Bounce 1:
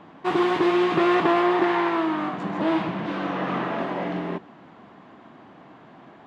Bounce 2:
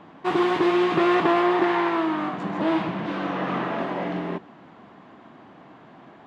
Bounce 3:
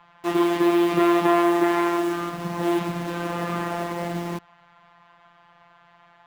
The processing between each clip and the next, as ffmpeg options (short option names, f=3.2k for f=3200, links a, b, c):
-af anull
-filter_complex "[0:a]afftfilt=real='hypot(re,im)*cos(PI*b)':imag='0':win_size=1024:overlap=0.75,acrossover=split=130|670|2100[a][b][c][d];[b]acrusher=bits=6:mix=0:aa=0.000001[e];[a][e][c][d]amix=inputs=4:normalize=0,volume=2dB"